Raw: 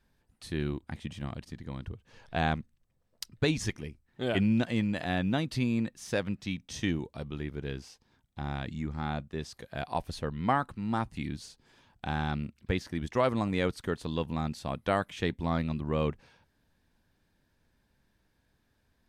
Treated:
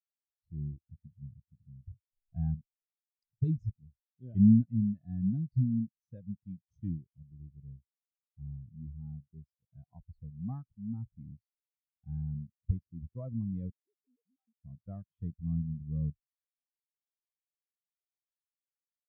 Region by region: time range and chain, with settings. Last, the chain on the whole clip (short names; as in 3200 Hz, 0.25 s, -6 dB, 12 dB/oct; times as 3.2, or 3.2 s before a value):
13.7–14.64 sine-wave speech + compressor 4:1, threshold -44 dBFS + Doppler distortion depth 0.74 ms
whole clip: tone controls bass +13 dB, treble +6 dB; spectral expander 2.5:1; gain -6 dB